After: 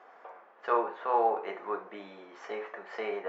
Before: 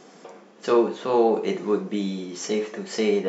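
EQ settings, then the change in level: Butterworth band-pass 1.1 kHz, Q 0.93; 0.0 dB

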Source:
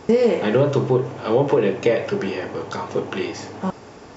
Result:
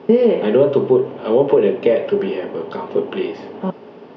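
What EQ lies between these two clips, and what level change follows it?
distance through air 83 m; cabinet simulation 160–4400 Hz, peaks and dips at 170 Hz +8 dB, 240 Hz +9 dB, 400 Hz +10 dB, 570 Hz +7 dB, 920 Hz +4 dB, 3 kHz +7 dB; -3.5 dB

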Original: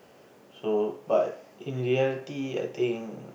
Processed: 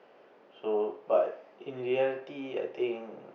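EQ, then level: high-pass 130 Hz; distance through air 300 m; tone controls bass -15 dB, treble 0 dB; 0.0 dB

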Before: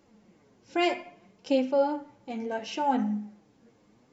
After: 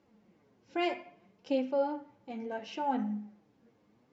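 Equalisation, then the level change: high-pass 51 Hz; Bessel low-pass 4.1 kHz, order 2; -5.5 dB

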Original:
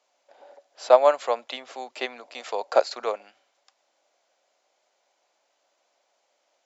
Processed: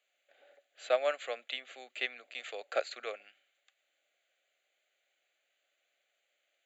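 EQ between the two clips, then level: high-pass 1.3 kHz 6 dB/octave; static phaser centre 2.3 kHz, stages 4; 0.0 dB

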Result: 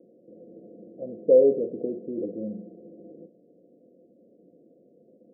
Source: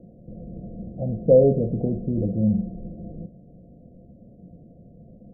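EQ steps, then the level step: Butterworth band-pass 400 Hz, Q 1.6; 0.0 dB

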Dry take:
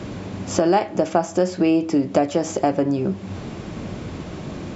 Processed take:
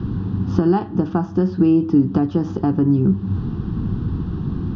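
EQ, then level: tilt EQ -4.5 dB/octave; bass shelf 72 Hz -9 dB; static phaser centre 2.2 kHz, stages 6; 0.0 dB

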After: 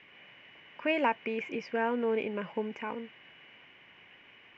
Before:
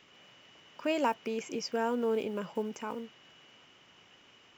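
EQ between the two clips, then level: resonant low-pass 2.2 kHz, resonance Q 3; band-stop 1.3 kHz, Q 7.6; 0.0 dB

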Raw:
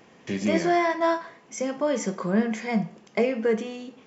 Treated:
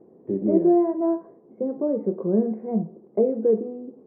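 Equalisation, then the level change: four-pole ladder low-pass 830 Hz, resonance 20%; peaking EQ 180 Hz +3 dB 1.1 oct; peaking EQ 370 Hz +12 dB 0.82 oct; 0.0 dB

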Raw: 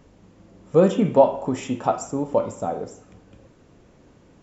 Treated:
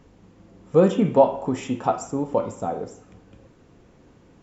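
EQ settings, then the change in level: treble shelf 6.1 kHz -4 dB; band-stop 600 Hz, Q 12; 0.0 dB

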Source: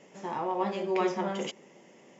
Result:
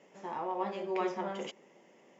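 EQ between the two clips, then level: high-pass 750 Hz 6 dB/octave; tilt EQ -2.5 dB/octave; -2.0 dB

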